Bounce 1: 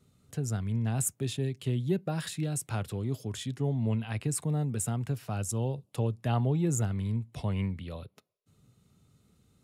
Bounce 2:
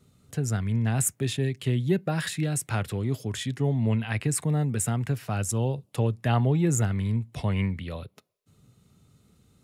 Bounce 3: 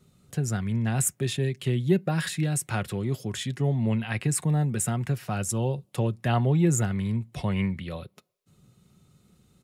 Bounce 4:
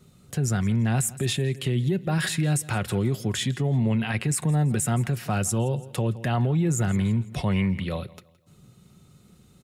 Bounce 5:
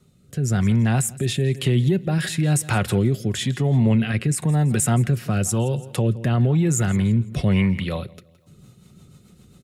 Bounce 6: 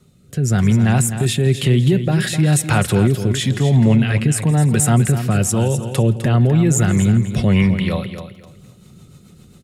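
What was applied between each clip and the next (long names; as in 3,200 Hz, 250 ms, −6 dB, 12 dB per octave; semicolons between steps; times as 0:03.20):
dynamic equaliser 1,900 Hz, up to +7 dB, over −59 dBFS, Q 1.8; level +4.5 dB
comb filter 5.5 ms, depth 32%
repeating echo 167 ms, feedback 36%, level −21.5 dB; brickwall limiter −22 dBFS, peak gain reduction 11 dB; level +5.5 dB
automatic gain control gain up to 6 dB; rotating-speaker cabinet horn 1 Hz, later 7.5 Hz, at 0:08.10
repeating echo 255 ms, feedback 23%, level −10 dB; level +4.5 dB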